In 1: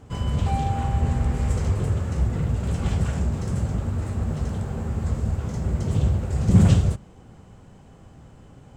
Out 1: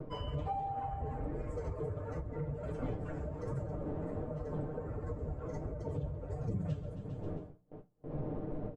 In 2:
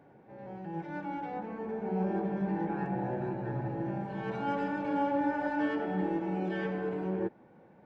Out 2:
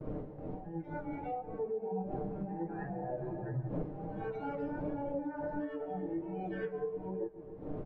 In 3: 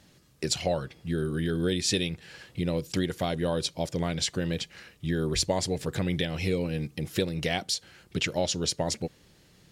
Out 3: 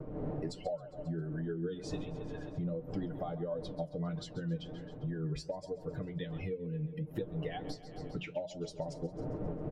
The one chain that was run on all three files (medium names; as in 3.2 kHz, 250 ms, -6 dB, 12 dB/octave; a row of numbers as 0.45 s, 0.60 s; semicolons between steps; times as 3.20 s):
expander on every frequency bin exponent 2; wind noise 260 Hz -42 dBFS; peaking EQ 550 Hz +7.5 dB 0.9 oct; comb 6.6 ms, depth 62%; feedback delay 134 ms, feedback 57%, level -18 dB; gate with hold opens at -44 dBFS; compression 8:1, threshold -40 dBFS; flange 1.4 Hz, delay 7.6 ms, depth 6.6 ms, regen +66%; low-pass 1.3 kHz 6 dB/octave; hum notches 60/120/180 Hz; trim +10 dB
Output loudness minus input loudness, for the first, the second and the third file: -16.0 LU, -5.5 LU, -10.0 LU